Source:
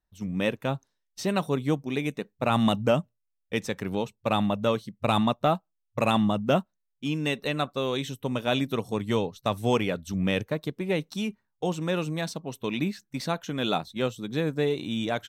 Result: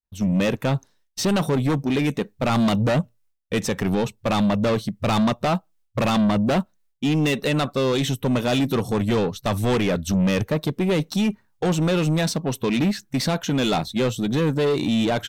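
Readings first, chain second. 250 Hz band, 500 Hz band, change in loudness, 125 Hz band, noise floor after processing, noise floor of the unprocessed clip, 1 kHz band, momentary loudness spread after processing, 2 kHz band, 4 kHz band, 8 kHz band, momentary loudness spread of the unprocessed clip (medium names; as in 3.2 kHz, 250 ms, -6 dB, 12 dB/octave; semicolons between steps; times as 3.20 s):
+7.0 dB, +4.5 dB, +5.5 dB, +8.0 dB, -65 dBFS, -79 dBFS, +2.5 dB, 5 LU, +4.0 dB, +4.5 dB, +10.0 dB, 9 LU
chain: one-sided wavefolder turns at -20 dBFS; in parallel at +2 dB: peak limiter -23 dBFS, peak gain reduction 10.5 dB; on the sum: saturation -23 dBFS, distortion -9 dB; bass shelf 370 Hz +3 dB; expander -58 dBFS; trim +5 dB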